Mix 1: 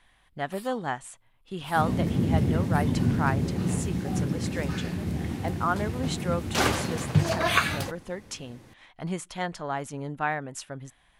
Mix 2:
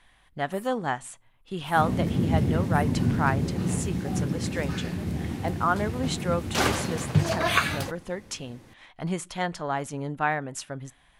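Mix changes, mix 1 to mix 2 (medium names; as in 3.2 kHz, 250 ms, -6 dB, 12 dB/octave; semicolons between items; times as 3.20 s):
speech: send +10.5 dB; first sound: add Butterworth band-stop 3.8 kHz, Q 0.79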